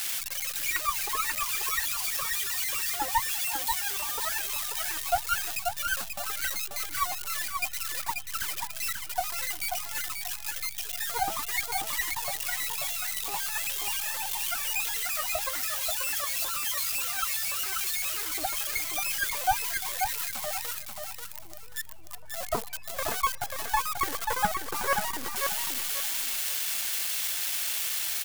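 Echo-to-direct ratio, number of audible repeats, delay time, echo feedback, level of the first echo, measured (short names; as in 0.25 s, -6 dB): -4.5 dB, 3, 0.536 s, 26%, -5.0 dB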